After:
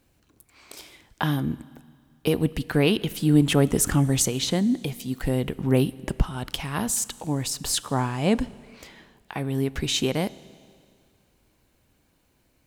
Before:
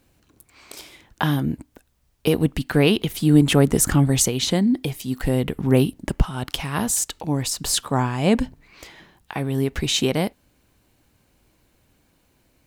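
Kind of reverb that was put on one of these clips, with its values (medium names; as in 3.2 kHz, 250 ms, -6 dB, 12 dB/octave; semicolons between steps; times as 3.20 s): Schroeder reverb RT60 2.2 s, combs from 26 ms, DRR 19.5 dB; trim -3.5 dB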